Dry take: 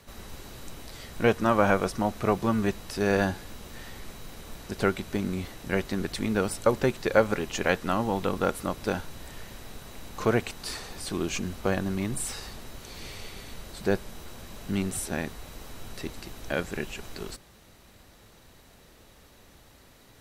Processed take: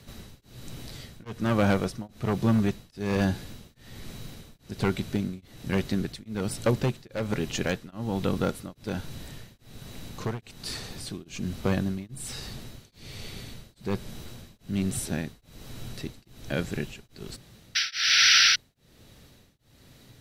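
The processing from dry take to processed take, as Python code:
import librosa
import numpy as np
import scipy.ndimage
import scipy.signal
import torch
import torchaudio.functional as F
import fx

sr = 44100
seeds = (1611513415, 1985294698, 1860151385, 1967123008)

p1 = fx.graphic_eq(x, sr, hz=(125, 250, 1000, 4000), db=(10, 3, -4, 4))
p2 = 10.0 ** (-13.5 / 20.0) * (np.abs((p1 / 10.0 ** (-13.5 / 20.0) + 3.0) % 4.0 - 2.0) - 1.0)
p3 = fx.spec_paint(p2, sr, seeds[0], shape='noise', start_s=17.75, length_s=0.81, low_hz=1300.0, high_hz=6000.0, level_db=-16.0)
p4 = 10.0 ** (-19.0 / 20.0) * np.tanh(p3 / 10.0 ** (-19.0 / 20.0))
p5 = p3 + (p4 * 10.0 ** (-10.0 / 20.0))
p6 = p5 * np.abs(np.cos(np.pi * 1.2 * np.arange(len(p5)) / sr))
y = p6 * 10.0 ** (-3.0 / 20.0)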